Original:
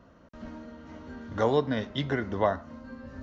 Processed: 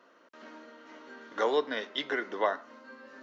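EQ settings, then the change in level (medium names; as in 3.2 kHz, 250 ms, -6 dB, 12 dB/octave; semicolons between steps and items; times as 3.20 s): high-pass 380 Hz 24 dB/octave; peaking EQ 650 Hz -9.5 dB 1.6 oct; treble shelf 4.8 kHz -8 dB; +5.5 dB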